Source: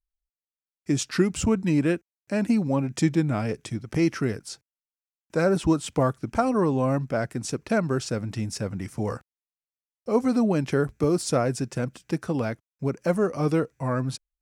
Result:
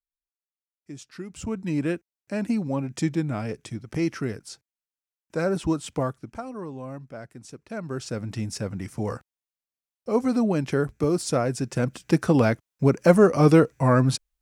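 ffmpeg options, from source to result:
ffmpeg -i in.wav -af "volume=17.5dB,afade=type=in:start_time=1.23:duration=0.61:silence=0.223872,afade=type=out:start_time=5.96:duration=0.46:silence=0.316228,afade=type=in:start_time=7.7:duration=0.62:silence=0.237137,afade=type=in:start_time=11.56:duration=0.67:silence=0.398107" out.wav

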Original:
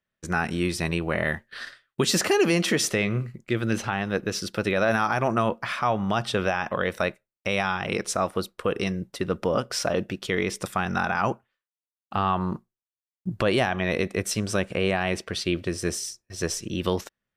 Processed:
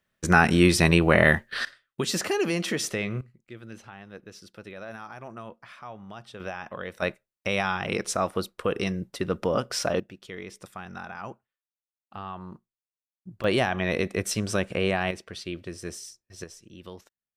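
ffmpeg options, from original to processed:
ffmpeg -i in.wav -af "asetnsamples=nb_out_samples=441:pad=0,asendcmd='1.65 volume volume -5dB;3.21 volume volume -17.5dB;6.4 volume volume -10dB;7.02 volume volume -1dB;10 volume volume -13.5dB;13.44 volume volume -1dB;15.11 volume volume -9dB;16.44 volume volume -17.5dB',volume=7.5dB" out.wav

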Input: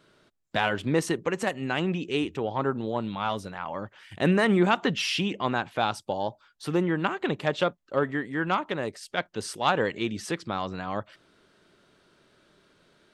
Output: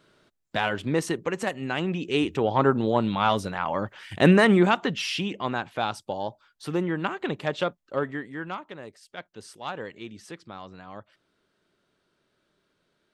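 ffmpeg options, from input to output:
ffmpeg -i in.wav -af "volume=6.5dB,afade=type=in:start_time=1.91:duration=0.65:silence=0.446684,afade=type=out:start_time=4.2:duration=0.68:silence=0.398107,afade=type=out:start_time=7.94:duration=0.69:silence=0.354813" out.wav

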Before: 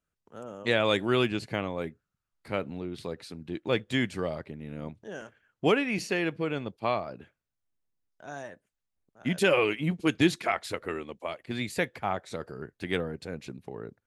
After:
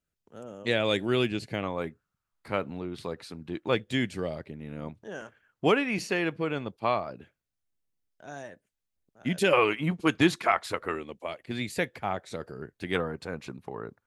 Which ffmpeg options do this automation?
ffmpeg -i in.wav -af "asetnsamples=nb_out_samples=441:pad=0,asendcmd='1.63 equalizer g 5;3.75 equalizer g -4.5;4.55 equalizer g 3;7.11 equalizer g -3.5;9.53 equalizer g 7.5;10.95 equalizer g -1.5;12.95 equalizer g 9.5',equalizer=frequency=1100:width_type=o:width=1.1:gain=-5.5" out.wav

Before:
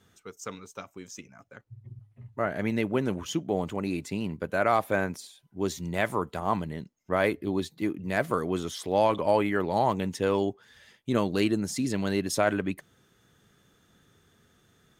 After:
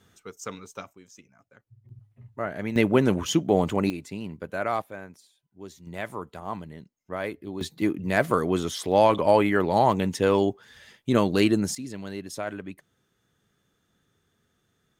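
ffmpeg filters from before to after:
ffmpeg -i in.wav -af "asetnsamples=nb_out_samples=441:pad=0,asendcmd='0.93 volume volume -8dB;1.89 volume volume -2dB;2.76 volume volume 7dB;3.9 volume volume -3.5dB;4.82 volume volume -13dB;5.87 volume volume -6.5dB;7.61 volume volume 4.5dB;11.75 volume volume -8dB',volume=2dB" out.wav

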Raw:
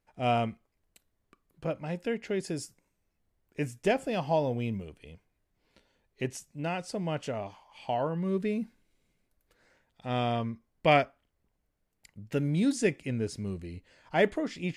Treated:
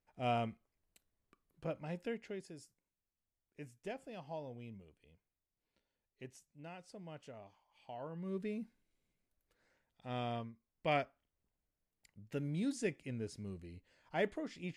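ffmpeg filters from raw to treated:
ffmpeg -i in.wav -af "volume=8dB,afade=type=out:start_time=2.01:duration=0.48:silence=0.316228,afade=type=in:start_time=7.94:duration=0.44:silence=0.421697,afade=type=out:start_time=10.38:duration=0.15:silence=0.375837,afade=type=in:start_time=10.53:duration=0.48:silence=0.375837" out.wav

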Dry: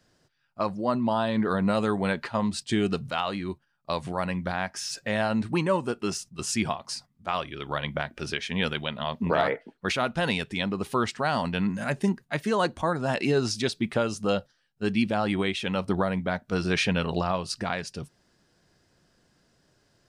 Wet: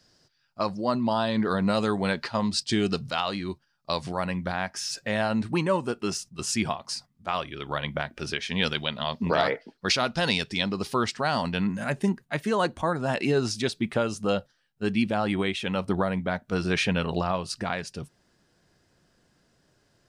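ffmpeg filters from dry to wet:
ffmpeg -i in.wav -af "asetnsamples=nb_out_samples=441:pad=0,asendcmd='4.18 equalizer g 2;8.48 equalizer g 13.5;10.9 equalizer g 5.5;11.64 equalizer g -1.5',equalizer=frequency=5000:width_type=o:width=0.74:gain=10" out.wav

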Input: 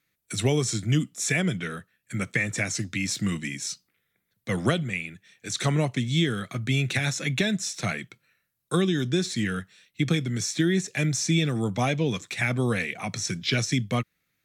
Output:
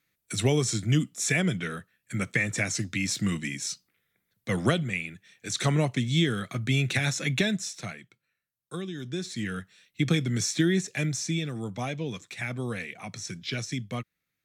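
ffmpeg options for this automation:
ffmpeg -i in.wav -af "volume=12.5dB,afade=type=out:start_time=7.42:duration=0.54:silence=0.266073,afade=type=in:start_time=8.94:duration=1.44:silence=0.223872,afade=type=out:start_time=10.38:duration=1.07:silence=0.375837" out.wav

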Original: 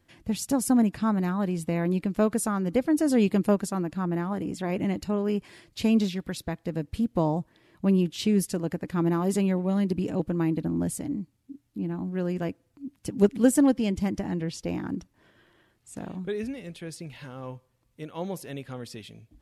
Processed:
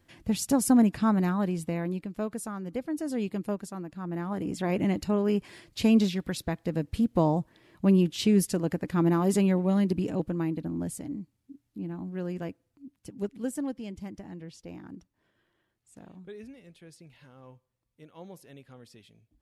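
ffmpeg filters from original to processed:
ffmpeg -i in.wav -af "volume=11dB,afade=type=out:start_time=1.23:duration=0.84:silence=0.316228,afade=type=in:start_time=3.99:duration=0.63:silence=0.316228,afade=type=out:start_time=9.71:duration=0.85:silence=0.501187,afade=type=out:start_time=12.36:duration=0.86:silence=0.421697" out.wav

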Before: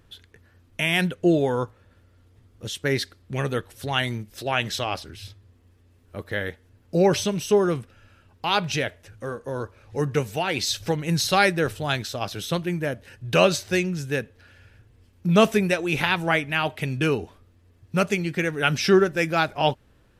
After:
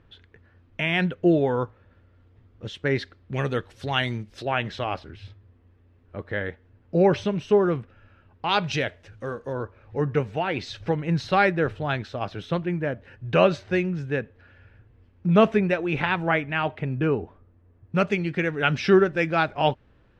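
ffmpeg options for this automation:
ffmpeg -i in.wav -af "asetnsamples=nb_out_samples=441:pad=0,asendcmd='3.34 lowpass f 4600;4.45 lowpass f 2300;8.49 lowpass f 4500;9.53 lowpass f 2200;16.79 lowpass f 1400;17.95 lowpass f 3100',lowpass=2700" out.wav

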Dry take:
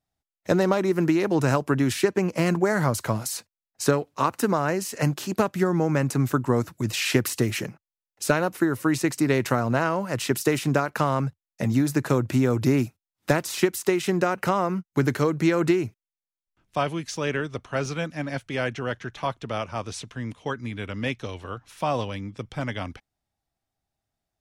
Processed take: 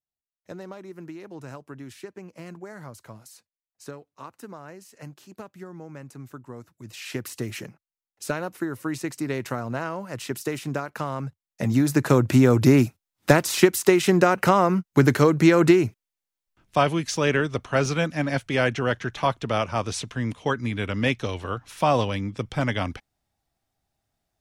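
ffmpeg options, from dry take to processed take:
ffmpeg -i in.wav -af "volume=5dB,afade=type=in:start_time=6.75:duration=0.79:silence=0.266073,afade=type=in:start_time=11.19:duration=1.12:silence=0.266073" out.wav

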